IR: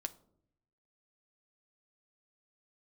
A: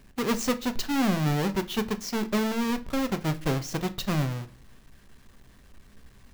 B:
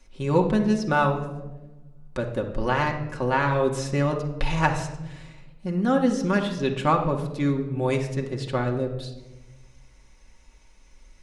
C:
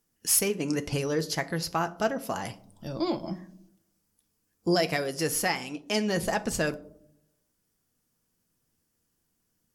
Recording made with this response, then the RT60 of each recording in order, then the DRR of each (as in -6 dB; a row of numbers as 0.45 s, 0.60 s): C; 0.50 s, 1.1 s, 0.70 s; 9.0 dB, 1.0 dB, 8.5 dB